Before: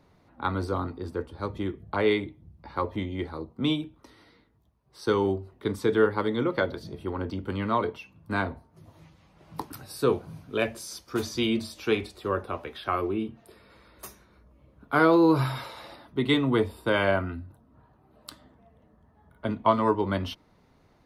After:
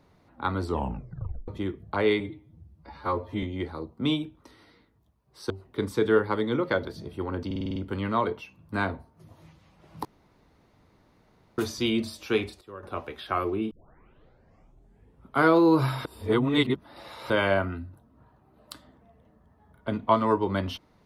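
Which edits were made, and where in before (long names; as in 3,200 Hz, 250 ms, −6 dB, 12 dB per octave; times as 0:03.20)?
0:00.62: tape stop 0.86 s
0:02.20–0:03.02: time-stretch 1.5×
0:05.09–0:05.37: remove
0:07.33: stutter 0.05 s, 7 plays
0:09.62–0:11.15: fill with room tone
0:11.81–0:12.77: duck −14.5 dB, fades 0.37 s logarithmic
0:13.28: tape start 1.71 s
0:15.62–0:16.87: reverse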